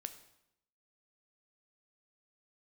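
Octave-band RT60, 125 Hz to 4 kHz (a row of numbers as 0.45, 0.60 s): 0.85, 0.85, 0.80, 0.80, 0.75, 0.70 s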